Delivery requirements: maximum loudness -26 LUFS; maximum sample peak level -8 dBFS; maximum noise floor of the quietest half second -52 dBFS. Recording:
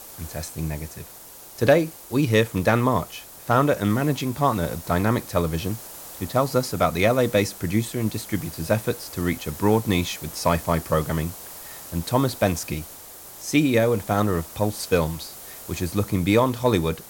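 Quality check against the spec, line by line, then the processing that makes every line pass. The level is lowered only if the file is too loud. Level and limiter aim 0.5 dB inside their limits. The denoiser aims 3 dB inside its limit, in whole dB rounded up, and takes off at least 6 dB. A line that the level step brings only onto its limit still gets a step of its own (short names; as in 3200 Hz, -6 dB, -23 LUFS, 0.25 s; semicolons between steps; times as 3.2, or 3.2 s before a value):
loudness -23.5 LUFS: fail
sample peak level -6.0 dBFS: fail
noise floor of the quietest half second -44 dBFS: fail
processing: denoiser 8 dB, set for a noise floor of -44 dBFS; gain -3 dB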